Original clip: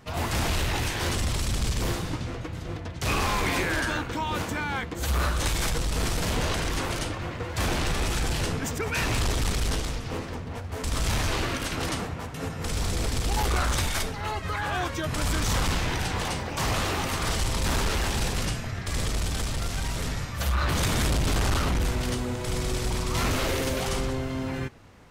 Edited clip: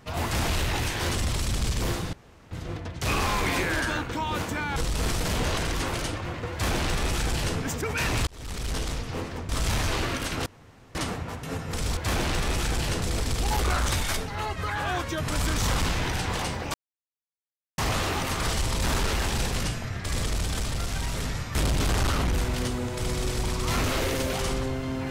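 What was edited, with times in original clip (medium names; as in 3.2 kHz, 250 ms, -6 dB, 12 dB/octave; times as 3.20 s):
2.13–2.51 s: room tone
4.76–5.73 s: delete
7.49–8.54 s: copy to 12.88 s
9.24–9.88 s: fade in
10.46–10.89 s: delete
11.86 s: insert room tone 0.49 s
16.60 s: insert silence 1.04 s
20.37–21.02 s: delete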